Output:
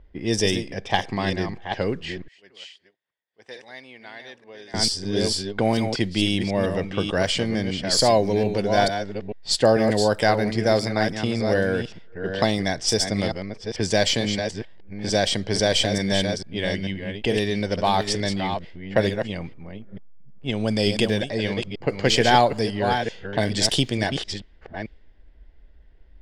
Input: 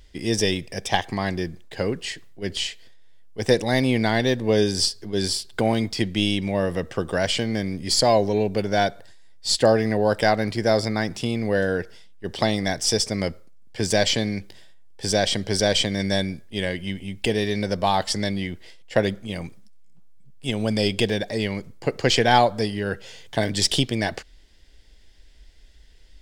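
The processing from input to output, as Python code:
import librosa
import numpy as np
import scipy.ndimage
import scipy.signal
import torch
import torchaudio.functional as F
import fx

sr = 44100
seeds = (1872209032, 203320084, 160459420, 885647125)

y = fx.reverse_delay(x, sr, ms=444, wet_db=-7.0)
y = fx.differentiator(y, sr, at=(2.28, 4.74))
y = fx.env_lowpass(y, sr, base_hz=1200.0, full_db=-17.0)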